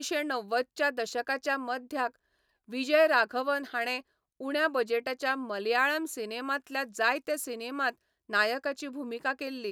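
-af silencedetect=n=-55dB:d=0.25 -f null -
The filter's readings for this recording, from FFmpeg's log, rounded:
silence_start: 2.16
silence_end: 2.68 | silence_duration: 0.52
silence_start: 4.01
silence_end: 4.40 | silence_duration: 0.39
silence_start: 7.94
silence_end: 8.29 | silence_duration: 0.35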